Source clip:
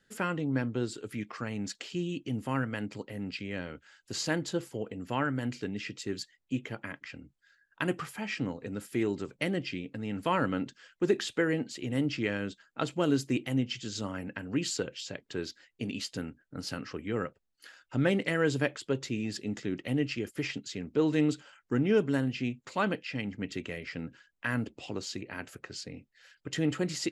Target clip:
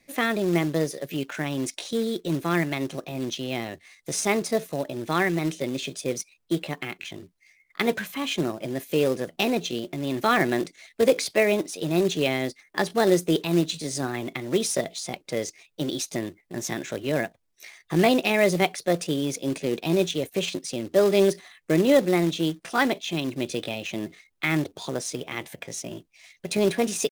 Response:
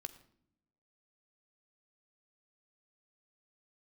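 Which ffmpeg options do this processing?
-af "acrusher=bits=4:mode=log:mix=0:aa=0.000001,asetrate=57191,aresample=44100,atempo=0.771105,volume=2.24"

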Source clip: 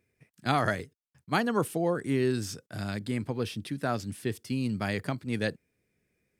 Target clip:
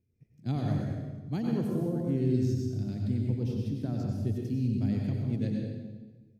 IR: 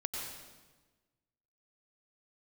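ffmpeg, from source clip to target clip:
-filter_complex "[0:a]firequalizer=gain_entry='entry(110,0);entry(510,-14);entry(1200,-28);entry(2300,-22);entry(6200,-14);entry(8900,-26);entry(13000,-17)':delay=0.05:min_phase=1[s0];[1:a]atrim=start_sample=2205[s1];[s0][s1]afir=irnorm=-1:irlink=0,volume=1.58"

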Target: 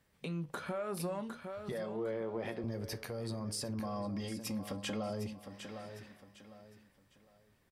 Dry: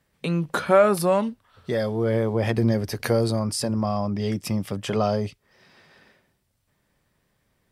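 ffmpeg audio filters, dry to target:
-filter_complex "[0:a]acompressor=threshold=0.0398:ratio=4,asettb=1/sr,asplit=3[s0][s1][s2];[s0]atrim=end=1.724[s3];[s1]atrim=start=1.72:end=2.64,asetpts=PTS-STARTPTS,afade=t=in:d=0.004:c=qsin,afade=t=out:st=0.916:d=0.004:c=qsin,highpass=220,lowpass=3700[s4];[s2]atrim=start=2.636[s5];[s3][s4]acrossfade=d=0.004:c1=hsin:c2=qsin[s6];[s6][s5]acrossfade=d=0.004:c1=qsin:c2=hsin,asettb=1/sr,asplit=3[s7][s8][s9];[s7]atrim=end=3.794[s10];[s8]atrim=start=3.79:end=5.1,asetpts=PTS-STARTPTS,afade=t=in:d=0.004:c=qsin,afade=t=out:st=1.306:d=0.004:c=qsin,aecho=1:1:3.7:0.75,atrim=end_sample=57771[s11];[s9]atrim=start=5.096[s12];[s10][s11]acrossfade=d=0.004:c1=hsin:c2=qsin[s13];[s13][s12]acrossfade=d=0.004:c1=qsin:c2=hsin,aecho=1:1:756|1512|2268:0.237|0.0711|0.0213,alimiter=level_in=1.06:limit=0.0631:level=0:latency=1:release=374,volume=0.944,flanger=delay=9.8:depth=2.3:regen=-76:speed=0.6:shape=triangular,asoftclip=type=tanh:threshold=0.0422,volume=1.12"

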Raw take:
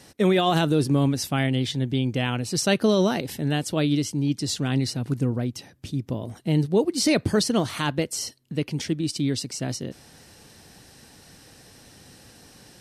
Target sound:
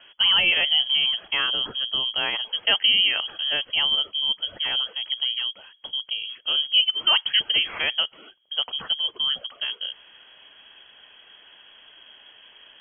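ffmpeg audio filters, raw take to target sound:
-filter_complex "[0:a]acrossover=split=220[s0][s1];[s0]acompressor=threshold=0.0158:ratio=6[s2];[s2][s1]amix=inputs=2:normalize=0,lowpass=f=2900:t=q:w=0.5098,lowpass=f=2900:t=q:w=0.6013,lowpass=f=2900:t=q:w=0.9,lowpass=f=2900:t=q:w=2.563,afreqshift=-3400,volume=1.26"

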